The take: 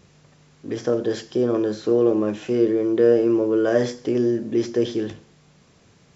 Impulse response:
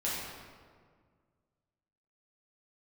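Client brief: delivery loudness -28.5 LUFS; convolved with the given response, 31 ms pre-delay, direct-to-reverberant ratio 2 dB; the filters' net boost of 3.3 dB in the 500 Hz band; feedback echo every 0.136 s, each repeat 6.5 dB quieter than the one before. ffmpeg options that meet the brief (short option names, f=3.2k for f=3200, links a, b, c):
-filter_complex "[0:a]equalizer=f=500:t=o:g=4,aecho=1:1:136|272|408|544|680|816:0.473|0.222|0.105|0.0491|0.0231|0.0109,asplit=2[a][b];[1:a]atrim=start_sample=2205,adelay=31[c];[b][c]afir=irnorm=-1:irlink=0,volume=-8.5dB[d];[a][d]amix=inputs=2:normalize=0,volume=-13dB"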